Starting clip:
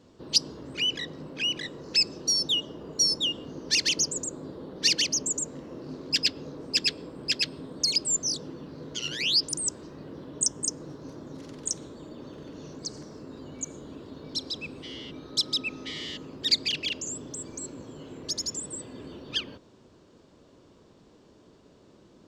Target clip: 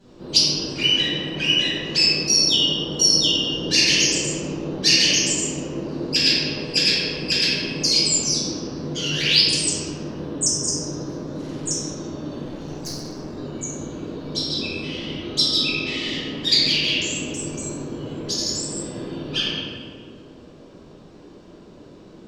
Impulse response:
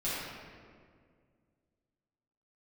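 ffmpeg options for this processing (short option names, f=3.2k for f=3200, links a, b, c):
-filter_complex "[1:a]atrim=start_sample=2205,asetrate=48510,aresample=44100[a];[0:a][a]afir=irnorm=-1:irlink=0,asettb=1/sr,asplit=3[b][c][d];[b]atrim=end=12.454[e];[c]atrim=start=12.45:end=13.38,asetpts=PTS-STARTPTS,afade=t=in:d=0.004:c=qsin,afade=t=out:st=0.926:d=0.004:c=qsin,aeval=exprs='clip(val(0),-1,0.0119)':c=same[f];[d]atrim=start=13.376[g];[e][f]acrossfade=d=0.004:c1=hsin:c2=qsin[h];[h][g]acrossfade=d=0.004:c1=qsin:c2=hsin,volume=4dB"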